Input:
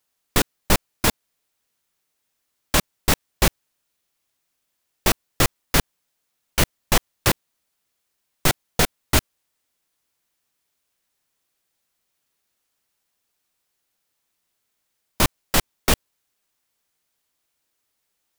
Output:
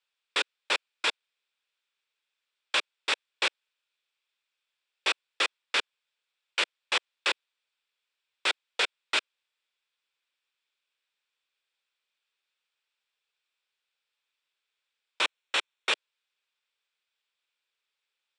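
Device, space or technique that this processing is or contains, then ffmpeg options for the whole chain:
phone speaker on a table: -filter_complex "[0:a]lowpass=frequency=9100:width=0.5412,lowpass=frequency=9100:width=1.3066,highpass=frequency=440:width=0.5412,highpass=frequency=440:width=1.3066,equalizer=frequency=690:width_type=q:width=4:gain=-8,equalizer=frequency=1500:width_type=q:width=4:gain=4,equalizer=frequency=2500:width_type=q:width=4:gain=9,equalizer=frequency=3500:width_type=q:width=4:gain=8,equalizer=frequency=6400:width_type=q:width=4:gain=-9,lowpass=frequency=7900:width=0.5412,lowpass=frequency=7900:width=1.3066,asettb=1/sr,asplit=3[link_01][link_02][link_03];[link_01]atrim=end=15.214[link_04];[link_02]atrim=start=15.21:end=15.93,asetpts=PTS-STARTPTS,afade=type=in:duration=0.004:curve=qsin,afade=type=out:start_time=0.716:duration=0.004:curve=qsin,bandreject=frequency=4800:width=6.6[link_05];[link_03]atrim=start=15.926[link_06];[link_04][link_05]acrossfade=duration=0.004:curve1=hsin:curve2=qsin[link_07];[link_07][link_06]acrossfade=duration=0.004:curve1=qsin:curve2=hsin,volume=-8dB"

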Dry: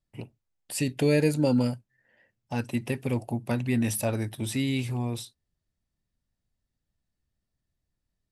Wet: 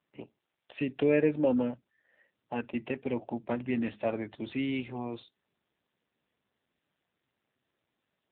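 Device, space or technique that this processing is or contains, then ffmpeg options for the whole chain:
telephone: -af "highpass=270,lowpass=3600" -ar 8000 -c:a libopencore_amrnb -b:a 7400

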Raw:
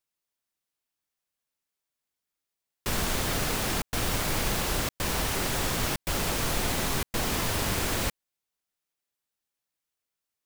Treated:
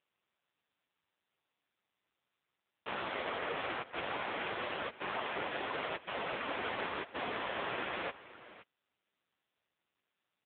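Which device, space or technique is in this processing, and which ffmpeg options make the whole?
satellite phone: -af "highpass=380,lowpass=3100,aecho=1:1:520:0.15" -ar 8000 -c:a libopencore_amrnb -b:a 5900

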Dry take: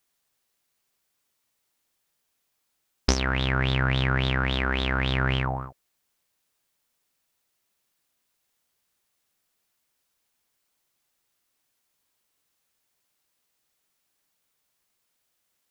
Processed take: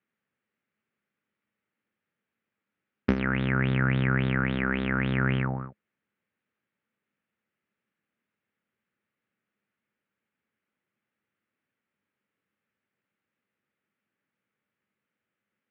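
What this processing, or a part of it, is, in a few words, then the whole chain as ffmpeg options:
bass cabinet: -af "highpass=frequency=88:width=0.5412,highpass=frequency=88:width=1.3066,equalizer=frequency=210:width_type=q:width=4:gain=9,equalizer=frequency=710:width_type=q:width=4:gain=-9,equalizer=frequency=1000:width_type=q:width=4:gain=-8,lowpass=frequency=2300:width=0.5412,lowpass=frequency=2300:width=1.3066"

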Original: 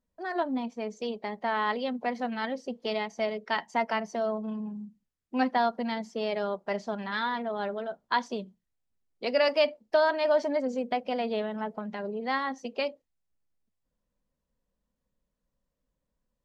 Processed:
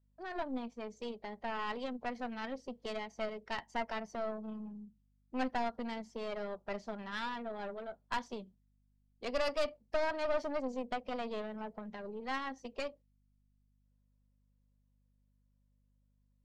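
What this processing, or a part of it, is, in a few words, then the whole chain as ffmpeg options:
valve amplifier with mains hum: -af "aeval=exprs='(tanh(14.1*val(0)+0.8)-tanh(0.8))/14.1':channel_layout=same,aeval=exprs='val(0)+0.000398*(sin(2*PI*50*n/s)+sin(2*PI*2*50*n/s)/2+sin(2*PI*3*50*n/s)/3+sin(2*PI*4*50*n/s)/4+sin(2*PI*5*50*n/s)/5)':channel_layout=same,volume=-4dB"

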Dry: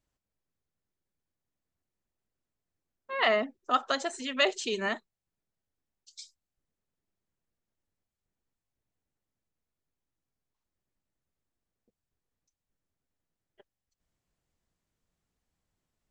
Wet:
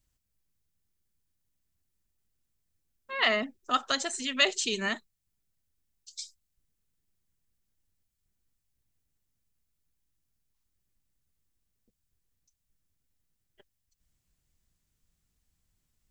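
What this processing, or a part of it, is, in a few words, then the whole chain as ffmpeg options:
smiley-face EQ: -af "lowshelf=frequency=99:gain=6.5,equalizer=frequency=620:width_type=o:width=2.5:gain=-8.5,highshelf=frequency=6500:gain=7,volume=4dB"

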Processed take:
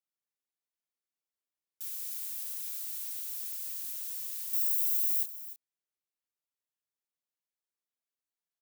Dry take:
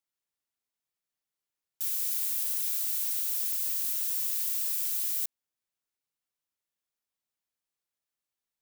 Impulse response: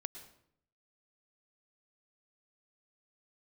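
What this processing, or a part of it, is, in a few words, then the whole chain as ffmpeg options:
filter by subtraction: -filter_complex "[0:a]asettb=1/sr,asplit=3[link_01][link_02][link_03];[link_01]atrim=end=4.534[link_04];[link_02]atrim=start=4.53:end=5.23,asetpts=PTS-STARTPTS,afade=type=in:duration=0.004:curve=qsin,afade=type=out:start_time=0.696:duration=0.004:curve=qsin,highshelf=frequency=11000:gain=11.5[link_05];[link_03]atrim=start=5.226[link_06];[link_04][link_05]acrossfade=duration=0.004:curve1=hsin:curve2=qsin[link_07];[link_07][link_06]acrossfade=duration=0.004:curve1=qsin:curve2=hsin,aecho=1:1:303:0.188,asplit=2[link_08][link_09];[link_09]lowpass=300,volume=-1[link_10];[link_08][link_10]amix=inputs=2:normalize=0,volume=-8dB"

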